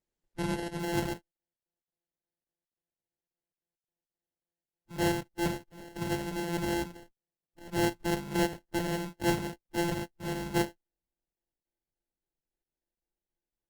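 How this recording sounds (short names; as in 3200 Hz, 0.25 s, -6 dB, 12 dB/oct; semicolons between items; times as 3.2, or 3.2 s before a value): a buzz of ramps at a fixed pitch in blocks of 128 samples; phasing stages 6, 3.6 Hz, lowest notch 550–3500 Hz; aliases and images of a low sample rate 1200 Hz, jitter 0%; Opus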